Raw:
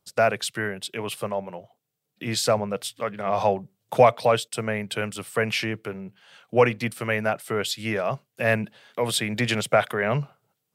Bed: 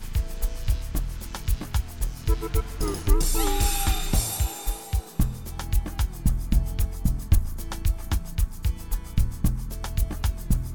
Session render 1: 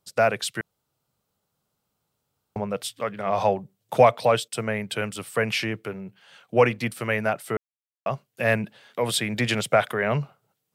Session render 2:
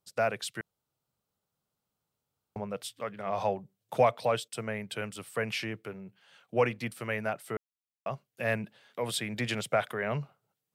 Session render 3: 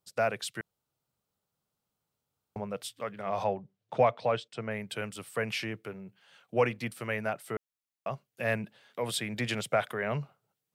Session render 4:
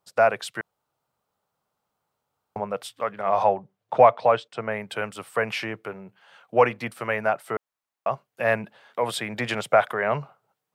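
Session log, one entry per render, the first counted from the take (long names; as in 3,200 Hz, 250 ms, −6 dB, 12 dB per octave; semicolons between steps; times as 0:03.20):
0:00.61–0:02.56: fill with room tone; 0:07.57–0:08.06: silence
level −8 dB
0:03.44–0:04.71: high-frequency loss of the air 140 metres
parametric band 930 Hz +12 dB 2.3 octaves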